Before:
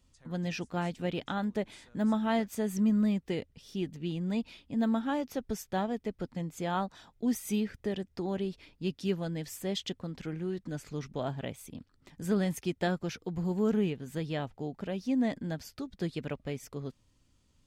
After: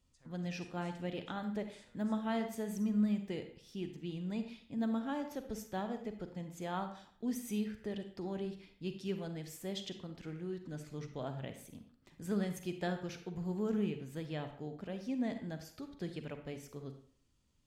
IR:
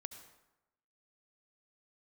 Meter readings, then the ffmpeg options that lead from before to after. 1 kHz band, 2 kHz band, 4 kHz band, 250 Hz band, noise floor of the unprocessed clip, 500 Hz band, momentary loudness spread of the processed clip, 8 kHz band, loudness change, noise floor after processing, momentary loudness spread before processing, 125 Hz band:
-6.5 dB, -6.5 dB, -6.5 dB, -6.0 dB, -69 dBFS, -6.5 dB, 11 LU, -7.0 dB, -6.0 dB, -69 dBFS, 10 LU, -6.0 dB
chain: -filter_complex "[1:a]atrim=start_sample=2205,asetrate=79380,aresample=44100[a];[0:a][a]afir=irnorm=-1:irlink=0,volume=2.5dB"

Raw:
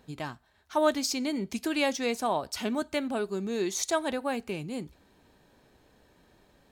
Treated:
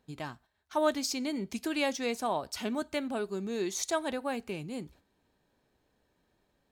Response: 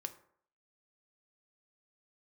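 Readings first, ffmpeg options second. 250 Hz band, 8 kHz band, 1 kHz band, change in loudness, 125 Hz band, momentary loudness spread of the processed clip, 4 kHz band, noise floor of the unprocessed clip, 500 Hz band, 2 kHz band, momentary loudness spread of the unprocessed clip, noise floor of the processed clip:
-3.0 dB, -3.0 dB, -3.0 dB, -3.0 dB, -3.0 dB, 12 LU, -3.0 dB, -64 dBFS, -3.0 dB, -3.0 dB, 12 LU, -75 dBFS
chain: -af "agate=range=-9dB:threshold=-54dB:ratio=16:detection=peak,volume=-3dB"

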